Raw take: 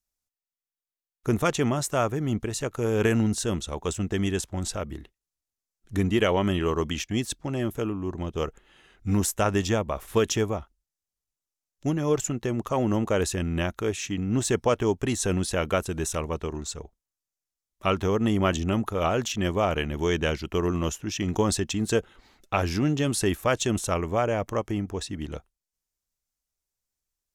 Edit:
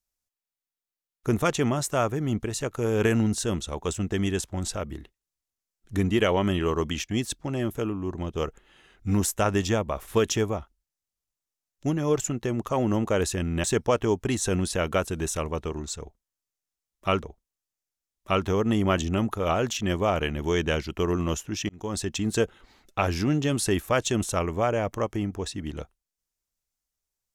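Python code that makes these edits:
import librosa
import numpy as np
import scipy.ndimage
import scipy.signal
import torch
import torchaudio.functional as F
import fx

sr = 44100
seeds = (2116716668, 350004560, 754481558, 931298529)

y = fx.edit(x, sr, fx.cut(start_s=13.64, length_s=0.78),
    fx.repeat(start_s=16.78, length_s=1.23, count=2),
    fx.fade_in_span(start_s=21.24, length_s=0.5), tone=tone)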